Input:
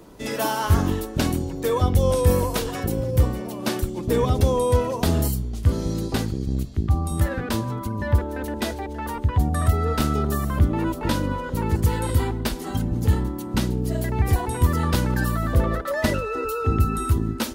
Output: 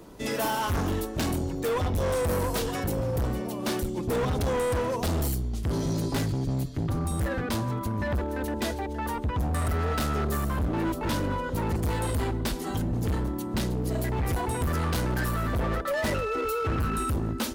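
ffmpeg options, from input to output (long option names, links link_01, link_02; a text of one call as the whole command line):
ffmpeg -i in.wav -filter_complex "[0:a]asettb=1/sr,asplit=3[link_01][link_02][link_03];[link_01]atrim=end=5.724[link_04];[link_02]atrim=start=5.72:end=7.05,asetpts=PTS-STARTPTS,afade=type=in:duration=0.004:curve=qsin,afade=type=out:start_time=1.326:duration=0.004:curve=qsin,aecho=1:1:7.1:0.82,atrim=end_sample=58653[link_05];[link_03]atrim=start=7.046[link_06];[link_04][link_05]acrossfade=duration=0.004:curve1=hsin:curve2=qsin[link_07];[link_07][link_06]acrossfade=duration=0.004:curve1=qsin:curve2=hsin,volume=23dB,asoftclip=hard,volume=-23dB,volume=-1dB" out.wav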